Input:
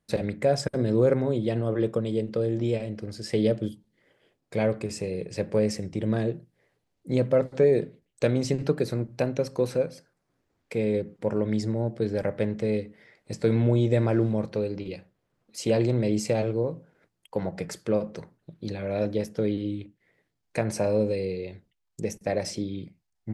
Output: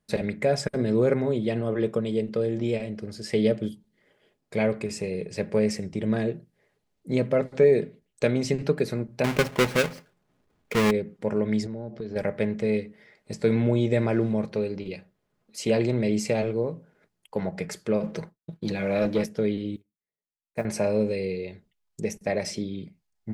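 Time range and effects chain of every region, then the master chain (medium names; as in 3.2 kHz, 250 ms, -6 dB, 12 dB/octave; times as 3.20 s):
9.24–10.91 s: square wave that keeps the level + treble shelf 6 kHz -6 dB
11.66–12.16 s: steep low-pass 6.4 kHz + compression 5:1, threshold -31 dBFS
18.03–19.26 s: expander -54 dBFS + comb 6.1 ms, depth 38% + waveshaping leveller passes 1
19.76–20.65 s: peaking EQ 3.9 kHz -7.5 dB 2.1 oct + short-mantissa float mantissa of 4-bit + upward expansion 2.5:1, over -42 dBFS
whole clip: dynamic bell 2.2 kHz, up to +5 dB, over -50 dBFS, Q 2; comb 4.8 ms, depth 31%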